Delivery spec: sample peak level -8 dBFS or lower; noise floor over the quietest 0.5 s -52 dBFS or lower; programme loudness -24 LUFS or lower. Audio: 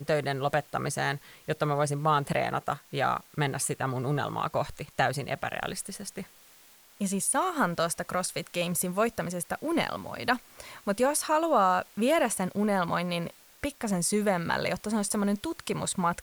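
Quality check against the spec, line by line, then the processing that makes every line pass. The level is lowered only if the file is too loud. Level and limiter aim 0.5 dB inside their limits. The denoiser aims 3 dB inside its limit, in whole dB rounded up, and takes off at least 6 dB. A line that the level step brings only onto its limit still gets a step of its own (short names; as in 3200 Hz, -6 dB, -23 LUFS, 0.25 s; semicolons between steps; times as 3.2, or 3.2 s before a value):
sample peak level -11.0 dBFS: OK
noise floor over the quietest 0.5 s -56 dBFS: OK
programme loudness -29.0 LUFS: OK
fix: none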